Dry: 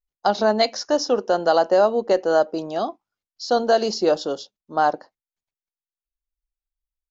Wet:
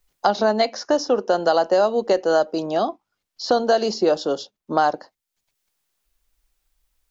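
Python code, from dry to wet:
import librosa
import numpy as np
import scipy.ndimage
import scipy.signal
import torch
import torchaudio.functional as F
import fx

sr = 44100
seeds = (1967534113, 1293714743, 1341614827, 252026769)

y = fx.high_shelf(x, sr, hz=3600.0, db=-6.5, at=(2.66, 3.44))
y = fx.band_squash(y, sr, depth_pct=70)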